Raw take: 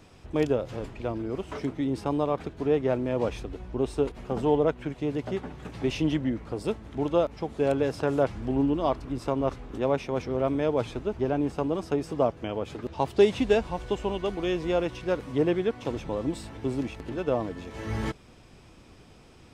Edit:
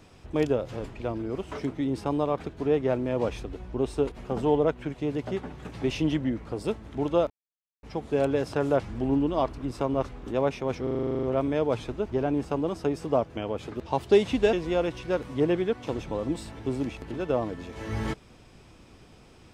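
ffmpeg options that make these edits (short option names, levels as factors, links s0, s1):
-filter_complex "[0:a]asplit=13[s0][s1][s2][s3][s4][s5][s6][s7][s8][s9][s10][s11][s12];[s0]atrim=end=7.3,asetpts=PTS-STARTPTS,afade=t=out:st=7.296:d=0.004:c=hsin,apad=pad_dur=0.53[s13];[s1]atrim=start=7.3:end=10.342,asetpts=PTS-STARTPTS,afade=t=in:d=0.004:c=hsin[s14];[s2]atrim=start=10.298:end=10.342[s15];[s3]atrim=start=10.298:end=10.342[s16];[s4]atrim=start=10.298:end=10.342[s17];[s5]atrim=start=10.298:end=10.342[s18];[s6]atrim=start=10.298:end=10.342[s19];[s7]atrim=start=10.298:end=10.342[s20];[s8]atrim=start=10.298:end=10.342[s21];[s9]atrim=start=10.298:end=10.342[s22];[s10]atrim=start=10.298:end=10.342[s23];[s11]atrim=start=10.298:end=13.602[s24];[s12]atrim=start=14.508[s25];[s13][s14]concat=n=2:v=0:a=1[s26];[s26][s15]acrossfade=d=0.004:c1=hsin:c2=hsin[s27];[s27][s16]acrossfade=d=0.004:c1=hsin:c2=hsin[s28];[s28][s17]acrossfade=d=0.004:c1=hsin:c2=hsin[s29];[s29][s18]acrossfade=d=0.004:c1=hsin:c2=hsin[s30];[s30][s19]acrossfade=d=0.004:c1=hsin:c2=hsin[s31];[s31][s20]acrossfade=d=0.004:c1=hsin:c2=hsin[s32];[s32][s21]acrossfade=d=0.004:c1=hsin:c2=hsin[s33];[s33][s22]acrossfade=d=0.004:c1=hsin:c2=hsin[s34];[s34][s23]acrossfade=d=0.004:c1=hsin:c2=hsin[s35];[s35][s24]acrossfade=d=0.004:c1=hsin:c2=hsin[s36];[s36][s25]acrossfade=d=0.004:c1=hsin:c2=hsin"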